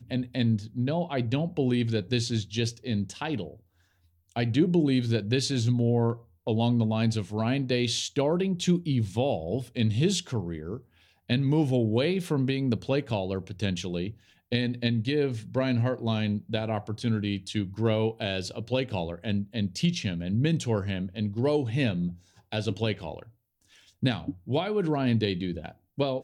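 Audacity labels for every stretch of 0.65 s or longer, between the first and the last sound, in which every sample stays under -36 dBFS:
3.530000	4.360000	silence
23.220000	24.030000	silence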